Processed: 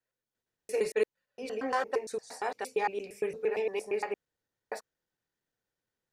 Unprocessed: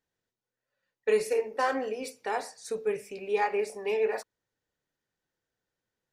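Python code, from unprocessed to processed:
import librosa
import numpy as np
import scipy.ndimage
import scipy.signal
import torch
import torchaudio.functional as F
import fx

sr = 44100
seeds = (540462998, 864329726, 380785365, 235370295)

y = fx.block_reorder(x, sr, ms=115.0, group=6)
y = y * librosa.db_to_amplitude(-2.5)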